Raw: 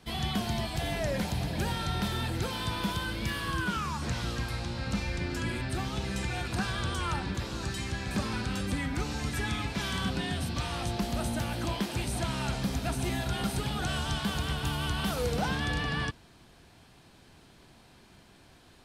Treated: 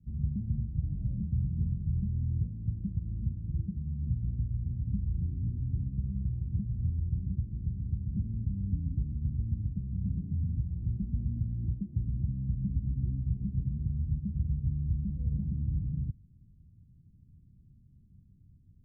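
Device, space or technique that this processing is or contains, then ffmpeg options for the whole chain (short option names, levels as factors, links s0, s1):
the neighbour's flat through the wall: -af "lowpass=f=180:w=0.5412,lowpass=f=180:w=1.3066,equalizer=f=87:t=o:w=0.92:g=3.5,volume=1.19"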